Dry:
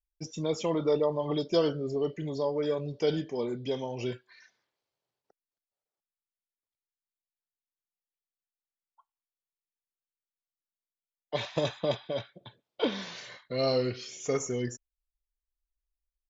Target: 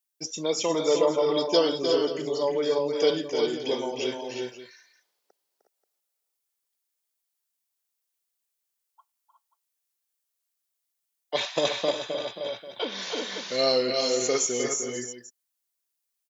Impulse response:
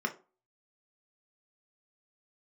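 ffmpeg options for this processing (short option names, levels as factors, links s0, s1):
-filter_complex "[0:a]highpass=300,highshelf=f=4400:g=11,asplit=2[s0][s1];[s1]aecho=0:1:305|347|363|533:0.447|0.251|0.473|0.2[s2];[s0][s2]amix=inputs=2:normalize=0,asettb=1/sr,asplit=3[s3][s4][s5];[s3]atrim=end=11.904[s6];[s4]atrim=start=11.9:end=13.39,asetpts=PTS-STARTPTS,afade=t=in:d=0.004:c=qsin,afade=t=out:st=1.486:d=0.004:c=qsin,acompressor=threshold=0.0282:ratio=6[s7];[s5]atrim=start=13.386[s8];[s6][s7]acrossfade=d=0.004:c1=hsin:c2=qsin[s9];[s9][s8]acrossfade=d=0.004:c1=qsin:c2=hsin,volume=1.58"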